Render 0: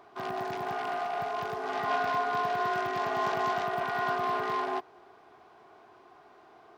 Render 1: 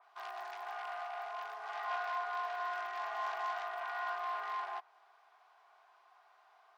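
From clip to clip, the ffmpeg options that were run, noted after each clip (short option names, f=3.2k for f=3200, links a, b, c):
-af "highpass=f=750:w=0.5412,highpass=f=750:w=1.3066,adynamicequalizer=threshold=0.00447:dfrequency=3300:dqfactor=0.7:tfrequency=3300:tqfactor=0.7:attack=5:release=100:ratio=0.375:range=2.5:mode=cutabove:tftype=highshelf,volume=-6.5dB"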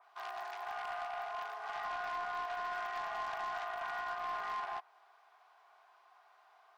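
-af "alimiter=level_in=8.5dB:limit=-24dB:level=0:latency=1:release=62,volume=-8.5dB,aeval=exprs='0.0251*(cos(1*acos(clip(val(0)/0.0251,-1,1)))-cos(1*PI/2))+0.00631*(cos(2*acos(clip(val(0)/0.0251,-1,1)))-cos(2*PI/2))+0.00282*(cos(4*acos(clip(val(0)/0.0251,-1,1)))-cos(4*PI/2))+0.000562*(cos(6*acos(clip(val(0)/0.0251,-1,1)))-cos(6*PI/2))+0.000316*(cos(7*acos(clip(val(0)/0.0251,-1,1)))-cos(7*PI/2))':c=same,volume=1.5dB"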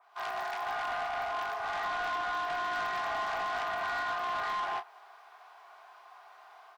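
-filter_complex "[0:a]asplit=2[a][b];[b]adelay=29,volume=-11dB[c];[a][c]amix=inputs=2:normalize=0,dynaudnorm=f=110:g=3:m=10dB,asoftclip=type=tanh:threshold=-29dB"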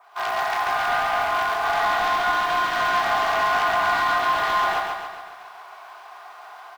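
-filter_complex "[0:a]asplit=2[a][b];[b]acrusher=bits=3:mode=log:mix=0:aa=0.000001,volume=-6.5dB[c];[a][c]amix=inputs=2:normalize=0,aecho=1:1:137|274|411|548|685|822|959:0.631|0.347|0.191|0.105|0.0577|0.0318|0.0175,volume=7dB"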